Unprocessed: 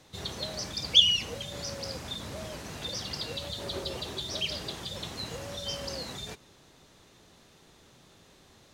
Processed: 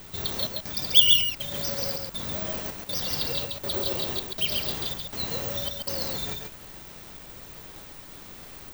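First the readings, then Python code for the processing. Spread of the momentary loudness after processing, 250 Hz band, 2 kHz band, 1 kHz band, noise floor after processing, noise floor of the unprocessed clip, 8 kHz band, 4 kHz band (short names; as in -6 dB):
23 LU, +3.5 dB, +3.5 dB, +4.0 dB, -45 dBFS, -59 dBFS, +3.0 dB, +2.0 dB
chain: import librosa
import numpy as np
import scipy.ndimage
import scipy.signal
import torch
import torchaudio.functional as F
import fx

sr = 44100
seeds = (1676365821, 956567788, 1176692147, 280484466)

p1 = fx.rider(x, sr, range_db=3, speed_s=0.5)
p2 = x + (p1 * librosa.db_to_amplitude(2.0))
p3 = fx.step_gate(p2, sr, bpm=161, pattern='xxxxx..x', floor_db=-60.0, edge_ms=4.5)
p4 = fx.dmg_noise_colour(p3, sr, seeds[0], colour='pink', level_db=-43.0)
p5 = p4 + 10.0 ** (-4.0 / 20.0) * np.pad(p4, (int(136 * sr / 1000.0), 0))[:len(p4)]
p6 = (np.kron(scipy.signal.resample_poly(p5, 1, 2), np.eye(2)[0]) * 2)[:len(p5)]
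y = p6 * librosa.db_to_amplitude(-5.5)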